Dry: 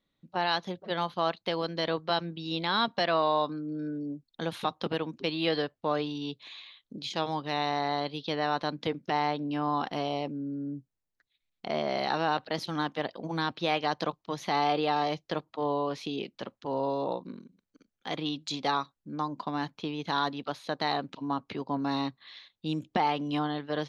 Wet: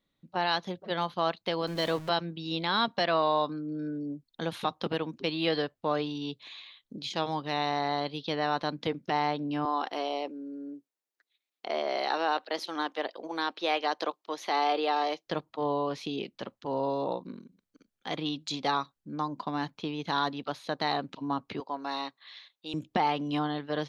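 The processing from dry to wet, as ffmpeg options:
-filter_complex "[0:a]asettb=1/sr,asplit=3[a][b][c];[a]atrim=end=1.674[d];[b]atrim=start=1.67:end=2.09,asetpts=PTS-STARTPTS,afade=t=in:d=0.004:c=qsin,afade=t=out:st=0.416:d=0.004:c=qsin,aeval=exprs='val(0)+0.5*0.0112*sgn(val(0))':c=same[e];[c]atrim=start=2.086[f];[d][e]acrossfade=d=0.004:c1=hsin:c2=qsin[g];[g][f]acrossfade=d=0.004:c1=qsin:c2=hsin,asettb=1/sr,asplit=3[h][i][j];[h]atrim=end=9.654[k];[i]atrim=start=9.65:end=15.26,asetpts=PTS-STARTPTS,afade=t=in:d=0.004:c=qsin,afade=t=out:st=5.606:d=0.004:c=qsin,highpass=f=310:w=0.5412,highpass=f=310:w=1.3066[l];[j]atrim=start=15.256[m];[k][l]acrossfade=d=0.004:c1=hsin:c2=qsin[n];[n][m]acrossfade=d=0.004:c1=qsin:c2=hsin,asettb=1/sr,asplit=3[o][p][q];[o]atrim=end=21.604[r];[p]atrim=start=21.6:end=22.74,asetpts=PTS-STARTPTS,afade=t=in:d=0.004:c=qsin,afade=t=out:st=1.136:d=0.004:c=qsin,highpass=510[s];[q]atrim=start=22.736[t];[r][s]acrossfade=d=0.004:c1=hsin:c2=qsin[u];[u][t]acrossfade=d=0.004:c1=qsin:c2=hsin"

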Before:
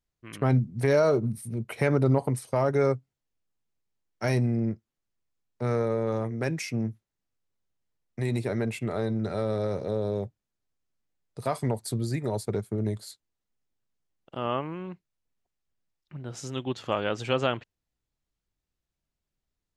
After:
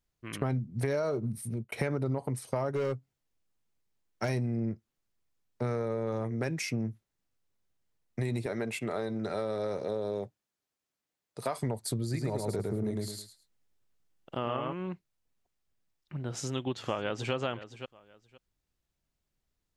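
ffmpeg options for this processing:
-filter_complex "[0:a]asettb=1/sr,asplit=3[a][b][c];[a]atrim=end=2.694[d];[b]atrim=start=2.69:end=4.29,asetpts=PTS-STARTPTS,afade=t=in:d=0.004:c=qsin,afade=t=out:st=1.596:d=0.004:c=qsin,asoftclip=type=hard:threshold=-20.5dB[e];[c]atrim=start=4.286[f];[d][e]acrossfade=d=0.004:c1=hsin:c2=qsin[g];[g][f]acrossfade=d=0.004:c1=qsin:c2=hsin,asettb=1/sr,asplit=3[h][i][j];[h]atrim=end=8.464[k];[i]atrim=start=8.46:end=11.57,asetpts=PTS-STARTPTS,afade=t=in:d=0.004:c=qsin,afade=t=out:st=3.106:d=0.004:c=qsin,highpass=f=340:p=1[l];[j]atrim=start=11.566[m];[k][l]acrossfade=d=0.004:c1=hsin:c2=qsin[n];[n][m]acrossfade=d=0.004:c1=qsin:c2=hsin,asplit=3[o][p][q];[o]afade=t=out:st=12.13:d=0.02[r];[p]aecho=1:1:107|214|321:0.708|0.17|0.0408,afade=t=in:st=12.13:d=0.02,afade=t=out:st=14.72:d=0.02[s];[q]afade=t=in:st=14.72:d=0.02[t];[r][s][t]amix=inputs=3:normalize=0,asplit=2[u][v];[v]afade=t=in:st=16.31:d=0.01,afade=t=out:st=17.33:d=0.01,aecho=0:1:520|1040:0.149624|0.0224435[w];[u][w]amix=inputs=2:normalize=0,asplit=2[x][y];[x]atrim=end=1.72,asetpts=PTS-STARTPTS,afade=t=out:st=1.32:d=0.4:c=qsin[z];[y]atrim=start=1.72,asetpts=PTS-STARTPTS,afade=t=in:d=0.004:c=hsin[aa];[z][aa]concat=n=2:v=0:a=1,acompressor=threshold=-32dB:ratio=4,volume=2.5dB"

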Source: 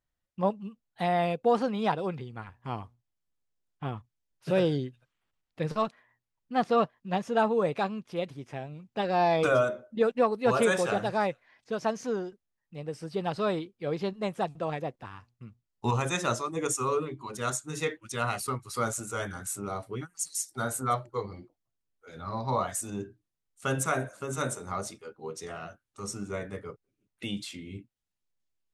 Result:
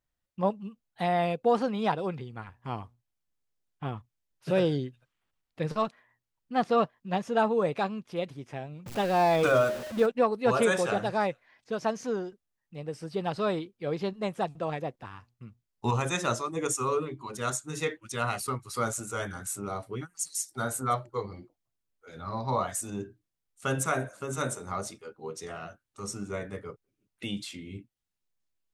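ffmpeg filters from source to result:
-filter_complex "[0:a]asettb=1/sr,asplit=3[a][b][c];[a]atrim=end=8.864[d];[b]atrim=start=8.86:end=10.06,asetpts=PTS-STARTPTS,afade=t=in:d=0.004:c=qsin,afade=t=out:st=1.196:d=0.004:c=qsin,aeval=exprs='val(0)+0.5*0.02*sgn(val(0))':c=same[e];[c]atrim=start=10.056[f];[d][e]acrossfade=d=0.004:c1=hsin:c2=qsin[g];[g][f]acrossfade=d=0.004:c1=qsin:c2=hsin"

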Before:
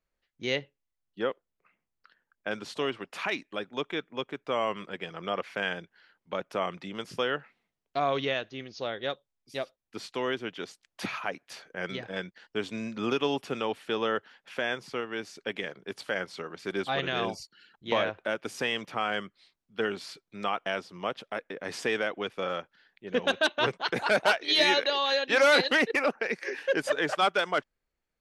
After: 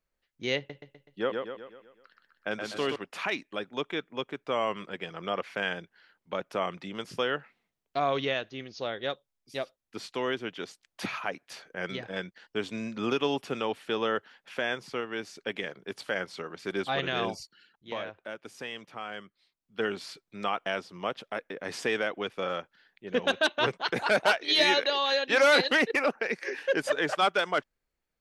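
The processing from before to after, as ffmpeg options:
-filter_complex "[0:a]asettb=1/sr,asplit=3[a][b][c];[a]atrim=end=0.574[d];[b]atrim=start=0.57:end=2.96,asetpts=PTS-STARTPTS,afade=t=in:d=0.004:c=qsin,afade=t=out:st=2.386:d=0.004:c=qsin,aecho=1:1:125|250|375|500|625|750:0.596|0.298|0.149|0.0745|0.0372|0.0186,atrim=end_sample=105399[e];[c]atrim=start=2.956[f];[d][e]acrossfade=d=0.004:c1=hsin:c2=qsin[g];[g][f]acrossfade=d=0.004:c1=qsin:c2=hsin,asplit=3[h][i][j];[h]atrim=end=17.78,asetpts=PTS-STARTPTS,afade=t=out:st=17.4:d=0.38:c=qsin:silence=0.354813[k];[i]atrim=start=17.78:end=19.55,asetpts=PTS-STARTPTS,volume=-9dB[l];[j]atrim=start=19.55,asetpts=PTS-STARTPTS,afade=t=in:d=0.38:c=qsin:silence=0.354813[m];[k][l][m]concat=n=3:v=0:a=1"

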